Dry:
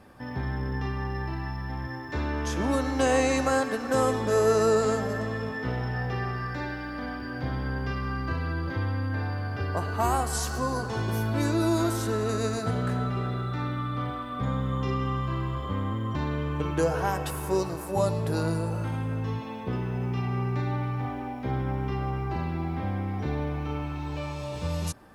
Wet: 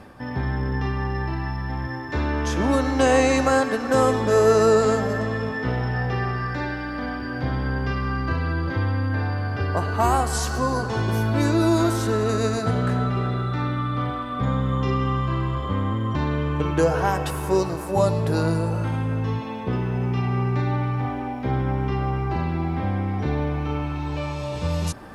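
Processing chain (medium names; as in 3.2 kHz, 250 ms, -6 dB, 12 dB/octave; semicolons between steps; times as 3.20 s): reverse; upward compressor, threshold -38 dBFS; reverse; treble shelf 10 kHz -8.5 dB; trim +5.5 dB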